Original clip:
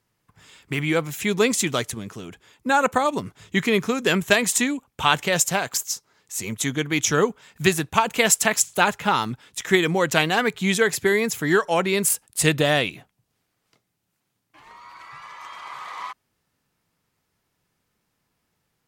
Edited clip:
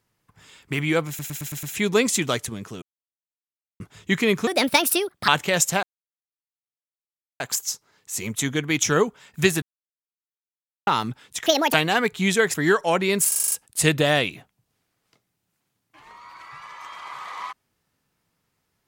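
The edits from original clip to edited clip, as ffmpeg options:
ffmpeg -i in.wav -filter_complex "[0:a]asplit=22[link_01][link_02][link_03][link_04][link_05][link_06][link_07][link_08][link_09][link_10][link_11][link_12][link_13][link_14][link_15][link_16][link_17][link_18][link_19][link_20][link_21][link_22];[link_01]atrim=end=1.192[link_23];[link_02]atrim=start=1.078:end=1.192[link_24];[link_03]atrim=start=1.078:end=1.192[link_25];[link_04]atrim=start=1.078:end=1.192[link_26];[link_05]atrim=start=1.078:end=1.192[link_27];[link_06]atrim=start=1.078:end=2.27,asetpts=PTS-STARTPTS,afade=type=out:start_time=1.188:duration=0.004:curve=hsin[link_28];[link_07]atrim=start=2.27:end=3.25,asetpts=PTS-STARTPTS,volume=0[link_29];[link_08]atrim=start=3.25:end=3.924,asetpts=PTS-STARTPTS,afade=type=in:duration=0.004:curve=hsin[link_30];[link_09]atrim=start=3.92:end=5.07,asetpts=PTS-STARTPTS,asetrate=62622,aresample=44100[link_31];[link_10]atrim=start=5.066:end=5.62,asetpts=PTS-STARTPTS,afade=type=out:start_time=0.55:duration=0.004:curve=hsin,apad=pad_dur=1.57[link_32];[link_11]atrim=start=5.62:end=7.84,asetpts=PTS-STARTPTS,afade=type=in:duration=0.004:curve=hsin,afade=type=out:start_time=2.216:duration=0.004:curve=hsin[link_33];[link_12]atrim=start=7.84:end=9.09,asetpts=PTS-STARTPTS,volume=0[link_34];[link_13]atrim=start=9.09:end=9.684,asetpts=PTS-STARTPTS,afade=type=in:duration=0.004:curve=hsin[link_35];[link_14]atrim=start=9.68:end=10.16,asetpts=PTS-STARTPTS,asetrate=75852,aresample=44100[link_36];[link_15]atrim=start=10.156:end=10.962[link_37];[link_16]atrim=start=11.378:end=12.162[link_38];[link_17]atrim=start=12.118:end=12.162[link_39];[link_18]atrim=start=12.118:end=12.162[link_40];[link_19]atrim=start=12.118:end=12.162[link_41];[link_20]atrim=start=12.118:end=12.162[link_42];[link_21]atrim=start=12.118:end=12.162[link_43];[link_22]atrim=start=12.118[link_44];[link_23][link_24]acrossfade=duration=0.004:curve1=hsin:curve2=hsin[link_45];[link_45][link_25]acrossfade=duration=0.004:curve1=hsin:curve2=hsin[link_46];[link_46][link_26]acrossfade=duration=0.004:curve1=hsin:curve2=hsin[link_47];[link_47][link_27]acrossfade=duration=0.004:curve1=hsin:curve2=hsin[link_48];[link_28][link_29][link_30]concat=n=3:v=0:a=1[link_49];[link_48][link_49]acrossfade=duration=0.004:curve1=hsin:curve2=hsin[link_50];[link_50][link_31]acrossfade=duration=0.004:curve1=hsin:curve2=hsin[link_51];[link_32][link_33][link_34][link_35]concat=n=4:v=0:a=1[link_52];[link_51][link_52]acrossfade=duration=0.004:curve1=hsin:curve2=hsin[link_53];[link_53][link_36]acrossfade=duration=0.004:curve1=hsin:curve2=hsin[link_54];[link_54][link_37]acrossfade=duration=0.004:curve1=hsin:curve2=hsin[link_55];[link_55][link_38]acrossfade=duration=0.004:curve1=hsin:curve2=hsin[link_56];[link_56][link_39]acrossfade=duration=0.004:curve1=hsin:curve2=hsin[link_57];[link_57][link_40]acrossfade=duration=0.004:curve1=hsin:curve2=hsin[link_58];[link_58][link_41]acrossfade=duration=0.004:curve1=hsin:curve2=hsin[link_59];[link_59][link_42]acrossfade=duration=0.004:curve1=hsin:curve2=hsin[link_60];[link_60][link_43]acrossfade=duration=0.004:curve1=hsin:curve2=hsin[link_61];[link_61][link_44]acrossfade=duration=0.004:curve1=hsin:curve2=hsin" out.wav

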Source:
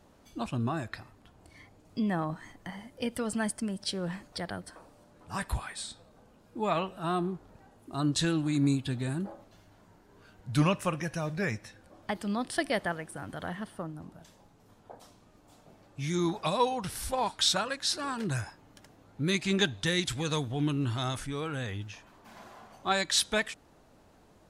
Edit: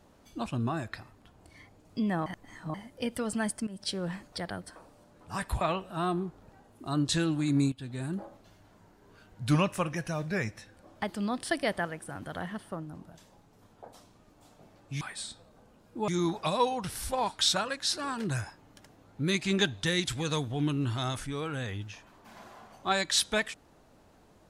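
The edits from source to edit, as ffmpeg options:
ffmpeg -i in.wav -filter_complex "[0:a]asplit=8[link_01][link_02][link_03][link_04][link_05][link_06][link_07][link_08];[link_01]atrim=end=2.262[link_09];[link_02]atrim=start=2.258:end=2.742,asetpts=PTS-STARTPTS,areverse[link_10];[link_03]atrim=start=2.738:end=3.67,asetpts=PTS-STARTPTS,afade=type=out:start_time=0.928:duration=0.004:curve=hsin:silence=0.16788[link_11];[link_04]atrim=start=3.67:end=5.612,asetpts=PTS-STARTPTS,afade=type=in:duration=0.26:curve=qsin:silence=0.16788[link_12];[link_05]atrim=start=6.678:end=8.79,asetpts=PTS-STARTPTS,afade=type=out:start_time=2.108:duration=0.004:curve=hsin:silence=0.177828[link_13];[link_06]atrim=start=8.79:end=16.082,asetpts=PTS-STARTPTS,afade=type=in:duration=0.46:silence=0.177828[link_14];[link_07]atrim=start=5.608:end=6.682[link_15];[link_08]atrim=start=16.078[link_16];[link_09][link_10]acrossfade=duration=0.004:curve1=hsin:curve2=hsin[link_17];[link_11][link_12]concat=n=2:v=0:a=1[link_18];[link_17][link_18]acrossfade=duration=0.004:curve1=hsin:curve2=hsin[link_19];[link_13][link_14]concat=n=2:v=0:a=1[link_20];[link_19][link_20]acrossfade=duration=0.004:curve1=hsin:curve2=hsin[link_21];[link_21][link_15]acrossfade=duration=0.004:curve1=hsin:curve2=hsin[link_22];[link_22][link_16]acrossfade=duration=0.004:curve1=hsin:curve2=hsin" out.wav

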